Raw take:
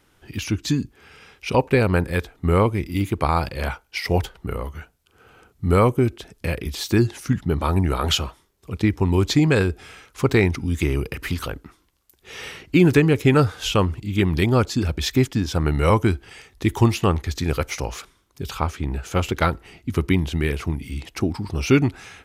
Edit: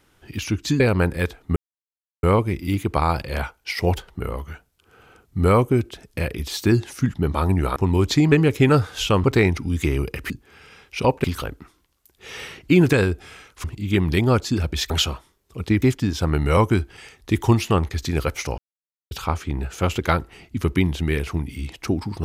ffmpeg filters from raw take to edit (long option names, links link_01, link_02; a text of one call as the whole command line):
ffmpeg -i in.wav -filter_complex "[0:a]asplit=14[link_01][link_02][link_03][link_04][link_05][link_06][link_07][link_08][link_09][link_10][link_11][link_12][link_13][link_14];[link_01]atrim=end=0.802[link_15];[link_02]atrim=start=1.738:end=2.5,asetpts=PTS-STARTPTS,afade=type=out:start_time=0.758:duration=0.004:curve=hsin,apad=pad_dur=0.67[link_16];[link_03]atrim=start=2.5:end=8.032,asetpts=PTS-STARTPTS,afade=type=in:duration=0.004:curve=hsin[link_17];[link_04]atrim=start=8.948:end=9.512[link_18];[link_05]atrim=start=12.968:end=13.892[link_19];[link_06]atrim=start=10.218:end=11.282[link_20];[link_07]atrim=start=0.798:end=1.742[link_21];[link_08]atrim=start=11.278:end=12.972[link_22];[link_09]atrim=start=9.508:end=10.222[link_23];[link_10]atrim=start=13.888:end=15.152[link_24];[link_11]atrim=start=8.028:end=8.952[link_25];[link_12]atrim=start=15.148:end=17.91,asetpts=PTS-STARTPTS,afade=type=out:start_time=2.758:duration=0.004:curve=hsin[link_26];[link_13]atrim=start=17.91:end=18.44,asetpts=PTS-STARTPTS,volume=0[link_27];[link_14]atrim=start=18.44,asetpts=PTS-STARTPTS,afade=type=in:duration=0.004:curve=hsin[link_28];[link_16][link_17]concat=n=2:v=0:a=1[link_29];[link_15][link_29]acrossfade=duration=0.004:curve1=hsin:curve2=hsin[link_30];[link_30][link_18]acrossfade=duration=0.004:curve1=hsin:curve2=hsin[link_31];[link_31][link_19]acrossfade=duration=0.004:curve1=hsin:curve2=hsin[link_32];[link_32][link_20]acrossfade=duration=0.004:curve1=hsin:curve2=hsin[link_33];[link_33][link_21]acrossfade=duration=0.004:curve1=hsin:curve2=hsin[link_34];[link_34][link_22]acrossfade=duration=0.004:curve1=hsin:curve2=hsin[link_35];[link_35][link_23]acrossfade=duration=0.004:curve1=hsin:curve2=hsin[link_36];[link_36][link_24]acrossfade=duration=0.004:curve1=hsin:curve2=hsin[link_37];[link_37][link_25]acrossfade=duration=0.004:curve1=hsin:curve2=hsin[link_38];[link_26][link_27][link_28]concat=n=3:v=0:a=1[link_39];[link_38][link_39]acrossfade=duration=0.004:curve1=hsin:curve2=hsin" out.wav